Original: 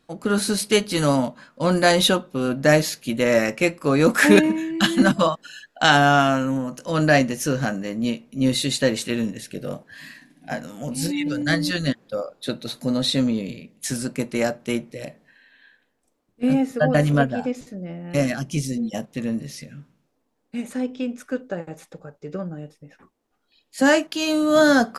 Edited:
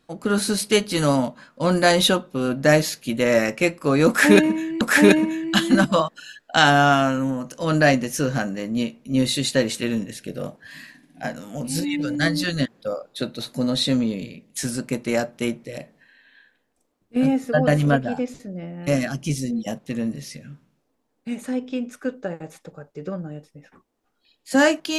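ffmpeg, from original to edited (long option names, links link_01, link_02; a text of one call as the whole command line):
ffmpeg -i in.wav -filter_complex "[0:a]asplit=2[link_01][link_02];[link_01]atrim=end=4.812[link_03];[link_02]atrim=start=4.078[link_04];[link_03][link_04]acrossfade=duration=0.004:curve1=hsin:curve2=hsin" out.wav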